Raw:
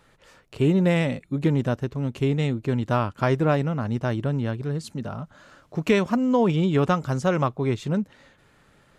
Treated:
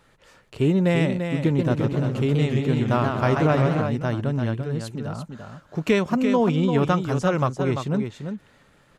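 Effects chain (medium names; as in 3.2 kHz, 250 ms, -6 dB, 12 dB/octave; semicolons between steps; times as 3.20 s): delay 342 ms -7 dB; 1.45–3.82 s: modulated delay 129 ms, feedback 52%, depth 207 cents, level -4.5 dB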